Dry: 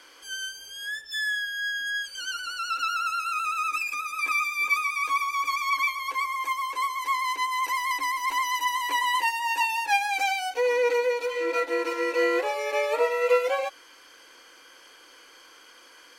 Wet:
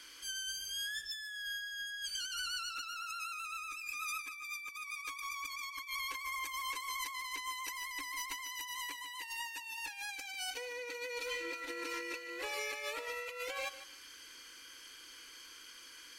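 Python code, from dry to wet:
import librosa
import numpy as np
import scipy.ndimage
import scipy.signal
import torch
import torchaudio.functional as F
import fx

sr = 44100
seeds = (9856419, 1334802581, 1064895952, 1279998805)

y = fx.tone_stack(x, sr, knobs='6-0-2')
y = fx.over_compress(y, sr, threshold_db=-54.0, ratio=-1.0)
y = fx.echo_feedback(y, sr, ms=149, feedback_pct=18, wet_db=-14)
y = F.gain(torch.from_numpy(y), 11.5).numpy()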